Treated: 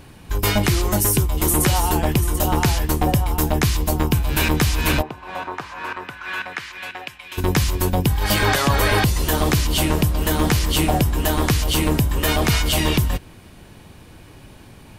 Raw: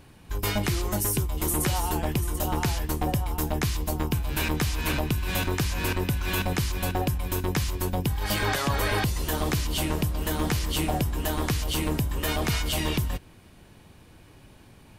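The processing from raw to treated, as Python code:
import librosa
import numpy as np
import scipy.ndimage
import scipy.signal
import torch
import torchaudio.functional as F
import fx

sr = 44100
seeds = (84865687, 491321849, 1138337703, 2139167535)

y = fx.bandpass_q(x, sr, hz=fx.line((5.01, 730.0), (7.37, 2700.0)), q=1.8, at=(5.01, 7.37), fade=0.02)
y = y * librosa.db_to_amplitude(8.0)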